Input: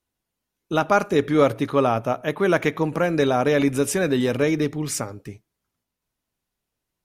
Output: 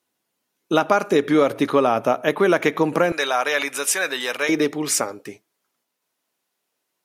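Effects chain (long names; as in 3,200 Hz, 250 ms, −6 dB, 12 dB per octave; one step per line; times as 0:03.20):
high-pass filter 230 Hz 12 dB per octave, from 0:03.12 1,000 Hz, from 0:04.49 350 Hz
downward compressor 6 to 1, threshold −20 dBFS, peak gain reduction 8 dB
level +7 dB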